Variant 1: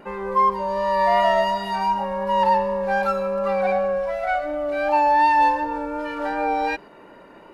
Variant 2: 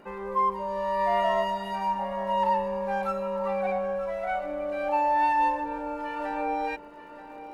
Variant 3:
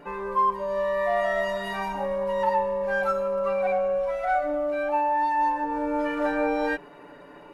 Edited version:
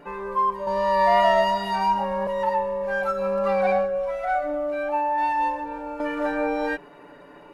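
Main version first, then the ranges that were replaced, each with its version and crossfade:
3
0.67–2.27 s: from 1
3.18–3.88 s: from 1, crossfade 0.16 s
5.18–6.00 s: from 2

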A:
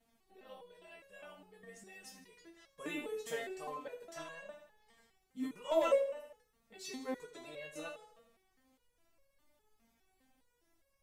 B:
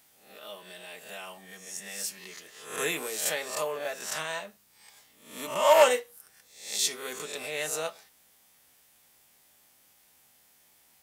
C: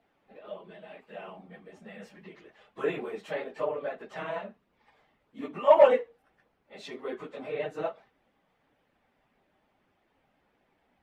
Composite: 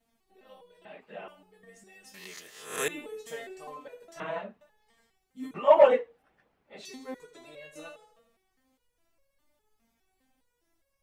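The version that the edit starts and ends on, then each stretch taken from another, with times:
A
0.85–1.28 s: from C
2.14–2.88 s: from B
4.20–4.61 s: from C
5.54–6.85 s: from C

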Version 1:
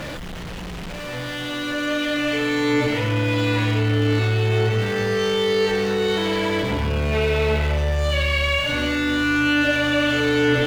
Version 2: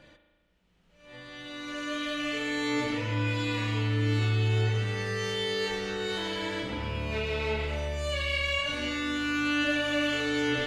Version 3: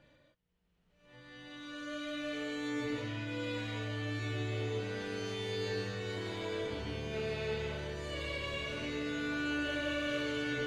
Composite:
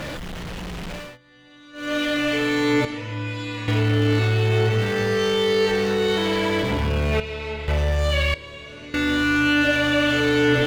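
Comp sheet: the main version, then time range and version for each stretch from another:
1
1.06–1.85 s: from 3, crossfade 0.24 s
2.85–3.68 s: from 2
7.20–7.68 s: from 2
8.34–8.94 s: from 3

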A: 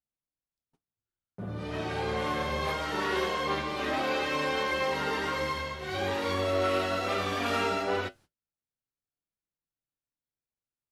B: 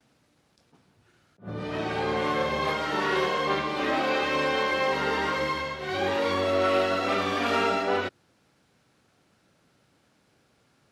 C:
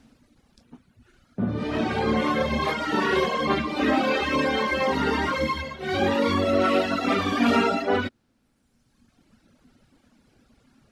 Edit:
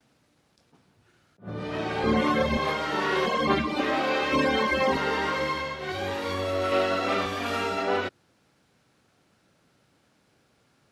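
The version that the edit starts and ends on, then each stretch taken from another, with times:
B
2.04–2.57 s: from C
3.26–3.81 s: from C
4.32–4.97 s: from C
5.92–6.72 s: from A
7.26–7.78 s: from A

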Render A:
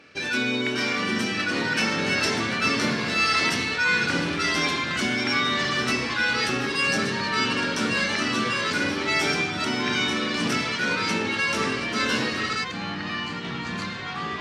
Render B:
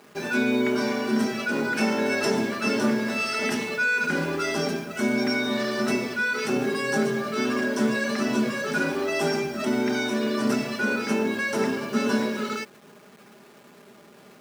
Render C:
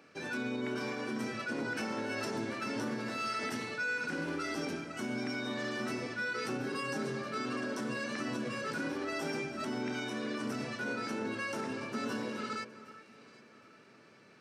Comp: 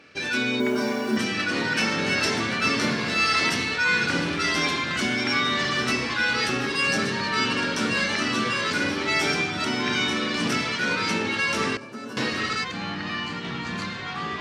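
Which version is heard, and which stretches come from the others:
A
0.60–1.17 s: from B
11.77–12.17 s: from C

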